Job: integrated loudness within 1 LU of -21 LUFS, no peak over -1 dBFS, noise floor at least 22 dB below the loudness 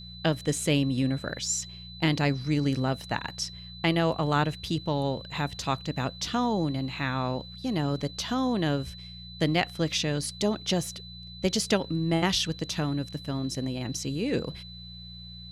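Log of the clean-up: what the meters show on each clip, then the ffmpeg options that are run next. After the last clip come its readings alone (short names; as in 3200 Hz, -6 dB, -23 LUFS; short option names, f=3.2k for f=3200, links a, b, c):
hum 60 Hz; harmonics up to 180 Hz; hum level -43 dBFS; steady tone 4000 Hz; tone level -44 dBFS; loudness -28.5 LUFS; peak -11.0 dBFS; loudness target -21.0 LUFS
-> -af "bandreject=f=60:t=h:w=4,bandreject=f=120:t=h:w=4,bandreject=f=180:t=h:w=4"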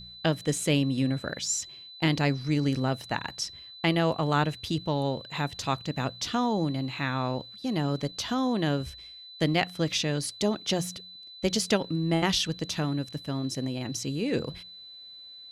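hum none; steady tone 4000 Hz; tone level -44 dBFS
-> -af "bandreject=f=4k:w=30"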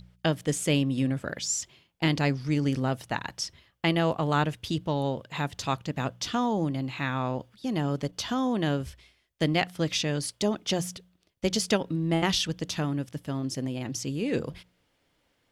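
steady tone none; loudness -29.0 LUFS; peak -11.0 dBFS; loudness target -21.0 LUFS
-> -af "volume=8dB"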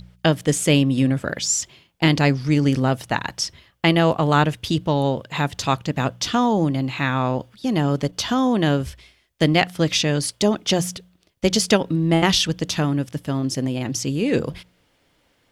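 loudness -21.0 LUFS; peak -3.0 dBFS; noise floor -64 dBFS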